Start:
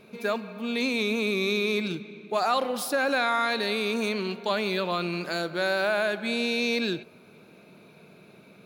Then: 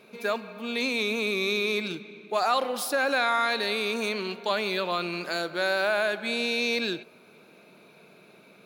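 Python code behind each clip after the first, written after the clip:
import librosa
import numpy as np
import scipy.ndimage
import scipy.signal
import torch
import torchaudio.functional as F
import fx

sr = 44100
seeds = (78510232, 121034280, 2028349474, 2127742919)

y = fx.highpass(x, sr, hz=350.0, slope=6)
y = y * 10.0 ** (1.0 / 20.0)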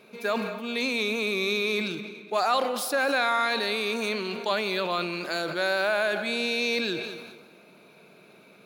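y = fx.echo_feedback(x, sr, ms=210, feedback_pct=44, wet_db=-19.0)
y = fx.sustainer(y, sr, db_per_s=44.0)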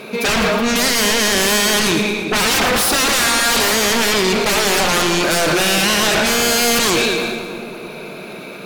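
y = fx.fold_sine(x, sr, drive_db=17, ceiling_db=-13.0)
y = fx.echo_split(y, sr, split_hz=1000.0, low_ms=305, high_ms=113, feedback_pct=52, wet_db=-9.0)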